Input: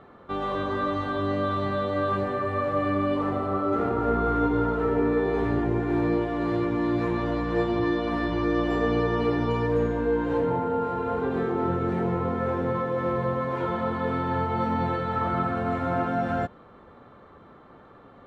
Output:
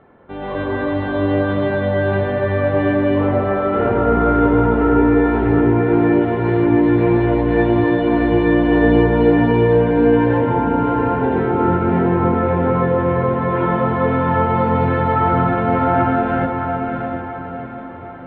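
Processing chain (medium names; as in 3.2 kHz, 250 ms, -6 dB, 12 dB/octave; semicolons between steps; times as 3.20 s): low-pass 2.9 kHz 24 dB/octave; band-stop 1.2 kHz, Q 5.8; de-hum 195.1 Hz, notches 32; level rider gain up to 8.5 dB; echo that smears into a reverb 699 ms, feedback 44%, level -5 dB; trim +1 dB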